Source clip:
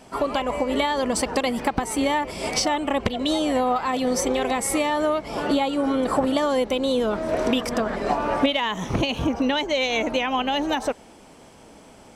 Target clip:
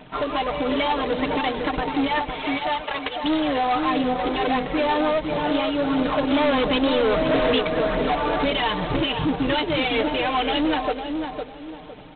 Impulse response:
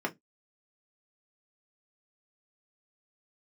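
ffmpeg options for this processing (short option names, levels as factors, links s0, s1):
-filter_complex "[0:a]asplit=3[s0][s1][s2];[s0]afade=t=out:st=2.06:d=0.02[s3];[s1]highpass=780,afade=t=in:st=2.06:d=0.02,afade=t=out:st=3.23:d=0.02[s4];[s2]afade=t=in:st=3.23:d=0.02[s5];[s3][s4][s5]amix=inputs=3:normalize=0,aecho=1:1:6.6:0.69,asplit=3[s6][s7][s8];[s6]afade=t=out:st=6.29:d=0.02[s9];[s7]acontrast=78,afade=t=in:st=6.29:d=0.02,afade=t=out:st=7.58:d=0.02[s10];[s8]afade=t=in:st=7.58:d=0.02[s11];[s9][s10][s11]amix=inputs=3:normalize=0,aphaser=in_gain=1:out_gain=1:delay=3.1:decay=0.46:speed=1.5:type=triangular,asoftclip=type=tanh:threshold=0.126,asplit=2[s12][s13];[s13]adelay=507,lowpass=f=1100:p=1,volume=0.596,asplit=2[s14][s15];[s15]adelay=507,lowpass=f=1100:p=1,volume=0.34,asplit=2[s16][s17];[s17]adelay=507,lowpass=f=1100:p=1,volume=0.34,asplit=2[s18][s19];[s19]adelay=507,lowpass=f=1100:p=1,volume=0.34[s20];[s12][s14][s16][s18][s20]amix=inputs=5:normalize=0" -ar 8000 -c:a adpcm_g726 -b:a 16k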